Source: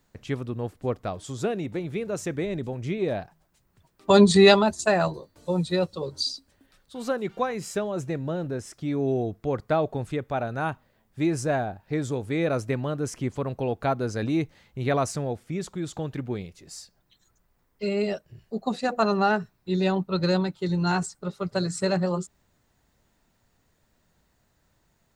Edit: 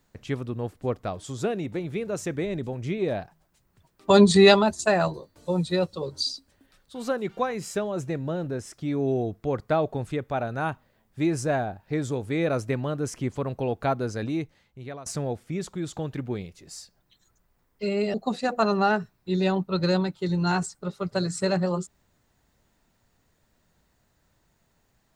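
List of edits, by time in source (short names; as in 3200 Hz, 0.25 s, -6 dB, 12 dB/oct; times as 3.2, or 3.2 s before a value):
13.94–15.06 fade out, to -21 dB
18.14–18.54 cut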